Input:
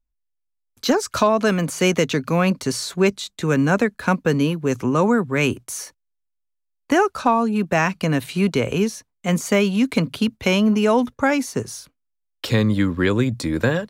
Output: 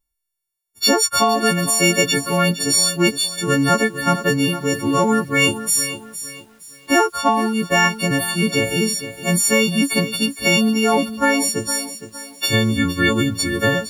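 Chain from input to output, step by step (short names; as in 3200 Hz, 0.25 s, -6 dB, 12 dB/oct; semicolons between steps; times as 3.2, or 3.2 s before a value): frequency quantiser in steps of 4 st; lo-fi delay 0.462 s, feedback 35%, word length 7-bit, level -12 dB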